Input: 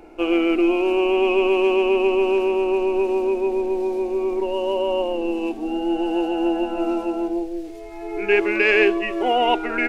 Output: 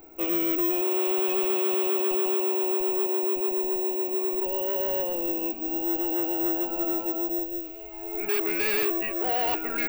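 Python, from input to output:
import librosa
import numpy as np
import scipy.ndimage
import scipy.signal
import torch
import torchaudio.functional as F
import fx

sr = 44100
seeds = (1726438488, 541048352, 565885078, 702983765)

y = fx.echo_wet_highpass(x, sr, ms=736, feedback_pct=79, hz=1700.0, wet_db=-15.5)
y = (np.kron(y[::2], np.eye(2)[0]) * 2)[:len(y)]
y = fx.slew_limit(y, sr, full_power_hz=1800.0)
y = F.gain(torch.from_numpy(y), -7.5).numpy()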